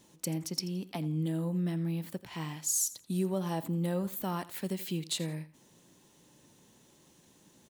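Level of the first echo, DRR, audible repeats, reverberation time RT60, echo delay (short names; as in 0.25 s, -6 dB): -17.5 dB, none, 2, none, 84 ms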